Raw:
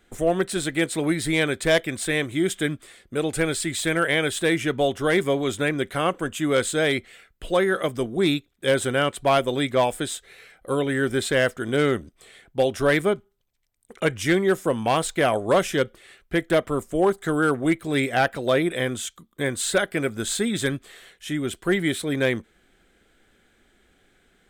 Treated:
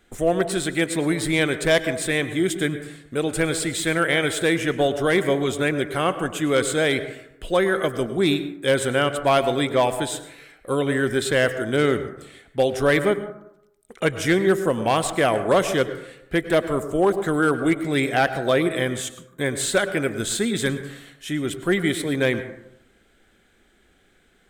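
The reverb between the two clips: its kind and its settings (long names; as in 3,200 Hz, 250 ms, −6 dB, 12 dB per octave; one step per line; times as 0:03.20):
dense smooth reverb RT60 0.79 s, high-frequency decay 0.35×, pre-delay 90 ms, DRR 11 dB
level +1 dB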